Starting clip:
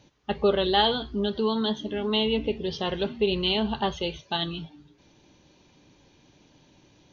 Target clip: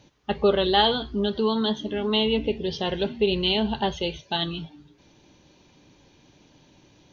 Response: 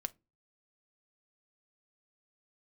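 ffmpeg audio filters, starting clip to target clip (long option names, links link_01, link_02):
-filter_complex "[0:a]asettb=1/sr,asplit=3[link_01][link_02][link_03];[link_01]atrim=end=2.394[link_04];[link_02]atrim=start=2.39:end=4.37,asetpts=PTS-STARTPTS,afade=type=in:duration=0.004:curve=qsin,afade=type=out:start_time=1.976:duration=0.004:curve=qsin,equalizer=frequency=1200:width_type=o:width=0.23:gain=-11.5[link_05];[link_03]atrim=start=4.366[link_06];[link_04][link_05]acrossfade=duration=0.004:curve1=hsin:curve2=qsin[link_07];[link_07][link_06]acrossfade=duration=0.004:curve1=qsin:curve2=hsin,volume=2dB"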